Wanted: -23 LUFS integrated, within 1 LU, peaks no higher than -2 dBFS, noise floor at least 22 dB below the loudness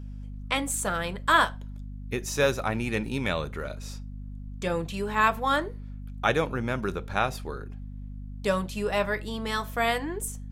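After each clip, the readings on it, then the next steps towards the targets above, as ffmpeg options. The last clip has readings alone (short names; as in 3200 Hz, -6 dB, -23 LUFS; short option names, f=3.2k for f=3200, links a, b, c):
hum 50 Hz; harmonics up to 250 Hz; hum level -36 dBFS; loudness -28.0 LUFS; peak -8.5 dBFS; loudness target -23.0 LUFS
-> -af "bandreject=f=50:t=h:w=6,bandreject=f=100:t=h:w=6,bandreject=f=150:t=h:w=6,bandreject=f=200:t=h:w=6,bandreject=f=250:t=h:w=6"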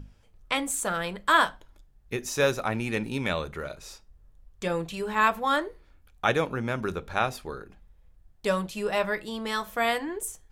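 hum none; loudness -28.0 LUFS; peak -8.0 dBFS; loudness target -23.0 LUFS
-> -af "volume=5dB"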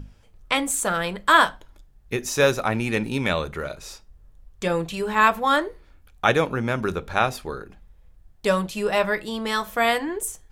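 loudness -23.0 LUFS; peak -3.0 dBFS; noise floor -54 dBFS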